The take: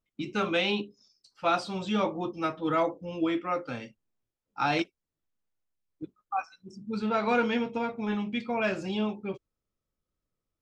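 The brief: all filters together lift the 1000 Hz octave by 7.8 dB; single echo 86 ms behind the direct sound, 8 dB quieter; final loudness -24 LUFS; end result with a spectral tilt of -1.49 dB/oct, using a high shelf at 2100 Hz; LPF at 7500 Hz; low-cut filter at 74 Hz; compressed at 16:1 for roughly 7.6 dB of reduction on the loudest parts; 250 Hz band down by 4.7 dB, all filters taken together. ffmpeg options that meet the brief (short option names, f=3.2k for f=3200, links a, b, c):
-af "highpass=74,lowpass=7.5k,equalizer=f=250:t=o:g=-7,equalizer=f=1k:t=o:g=9,highshelf=f=2.1k:g=8,acompressor=threshold=-22dB:ratio=16,aecho=1:1:86:0.398,volume=5dB"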